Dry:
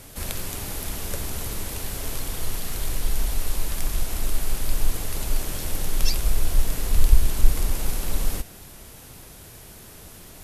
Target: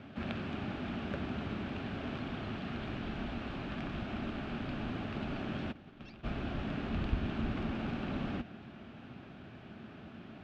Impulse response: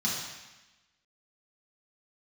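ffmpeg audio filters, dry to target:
-filter_complex "[0:a]highpass=130,equalizer=f=230:t=q:w=4:g=8,equalizer=f=480:t=q:w=4:g=-10,equalizer=f=970:t=q:w=4:g=-8,equalizer=f=2k:t=q:w=4:g=-8,lowpass=f=2.6k:w=0.5412,lowpass=f=2.6k:w=1.3066,asplit=3[a][b][c];[a]afade=t=out:st=5.71:d=0.02[d];[b]agate=range=-33dB:threshold=-26dB:ratio=3:detection=peak,afade=t=in:st=5.71:d=0.02,afade=t=out:st=6.23:d=0.02[e];[c]afade=t=in:st=6.23:d=0.02[f];[d][e][f]amix=inputs=3:normalize=0"

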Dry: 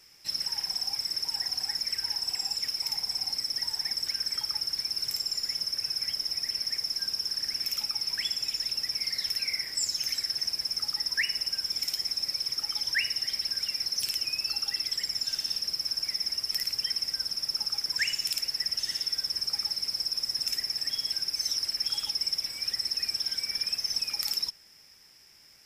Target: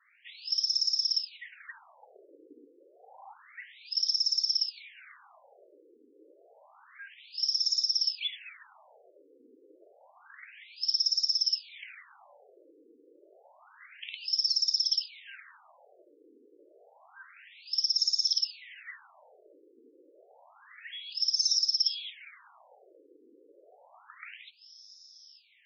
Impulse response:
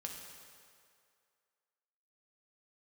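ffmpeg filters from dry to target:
-filter_complex "[0:a]afreqshift=18,asettb=1/sr,asplit=3[a][b][c];[a]atrim=end=2.154[d];[b]atrim=start=2.15:end=2.66,asetpts=PTS-STARTPTS,afade=t=in:d=0.004:c=qsin,afade=t=out:st=0.506:d=0.004:c=qsin,aeval=exprs='clip(val(0),-1,0.0158)':c=same[e];[c]atrim=start=2.656[f];[d][e]acrossfade=d=0.004:c1=hsin:c2=qsin[g];[g][f]acrossfade=d=0.004:c1=qsin:c2=hsin,afftfilt=real='re*between(b*sr/1024,360*pow(5000/360,0.5+0.5*sin(2*PI*0.29*pts/sr))/1.41,360*pow(5000/360,0.5+0.5*sin(2*PI*0.29*pts/sr))*1.41)':imag='im*between(b*sr/1024,360*pow(5000/360,0.5+0.5*sin(2*PI*0.29*pts/sr))/1.41,360*pow(5000/360,0.5+0.5*sin(2*PI*0.29*pts/sr))*1.41)':win_size=1024:overlap=0.75,volume=3.5dB"

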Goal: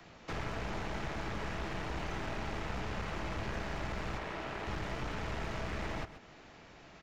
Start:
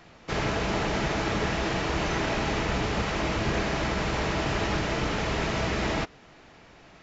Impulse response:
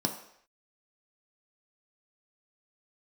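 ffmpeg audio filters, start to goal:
-filter_complex "[0:a]aeval=exprs='clip(val(0),-1,0.0237)':c=same,asettb=1/sr,asplit=3[a][b][c];[a]atrim=end=4.184[d];[b]atrim=start=4.18:end=4.67,asetpts=PTS-STARTPTS,afade=t=in:d=0.004:c=qsin,afade=t=out:st=0.486:d=0.004:c=qsin,bass=f=250:g=-12,treble=f=4k:g=-7[e];[c]atrim=start=4.666[f];[d][e]acrossfade=d=0.004:c1=hsin:c2=qsin[g];[g][f]acrossfade=d=0.004:c1=qsin:c2=hsin,aecho=1:1:129:0.141,acrossover=split=100|290|630|2400[h][i][j][k][l];[h]acompressor=threshold=-34dB:ratio=4[m];[i]acompressor=threshold=-43dB:ratio=4[n];[j]acompressor=threshold=-47dB:ratio=4[o];[k]acompressor=threshold=-39dB:ratio=4[p];[l]acompressor=threshold=-51dB:ratio=4[q];[m][n][o][p][q]amix=inputs=5:normalize=0,volume=-3dB"

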